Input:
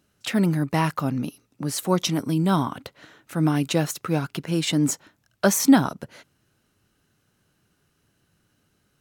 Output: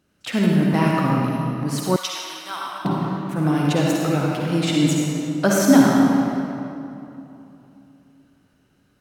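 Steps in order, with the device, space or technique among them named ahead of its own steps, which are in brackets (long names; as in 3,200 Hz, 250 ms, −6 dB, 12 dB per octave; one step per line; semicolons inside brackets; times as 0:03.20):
swimming-pool hall (convolution reverb RT60 2.9 s, pre-delay 47 ms, DRR −3.5 dB; high-shelf EQ 5,100 Hz −6 dB)
0:01.96–0:02.85: high-pass filter 1,400 Hz 12 dB per octave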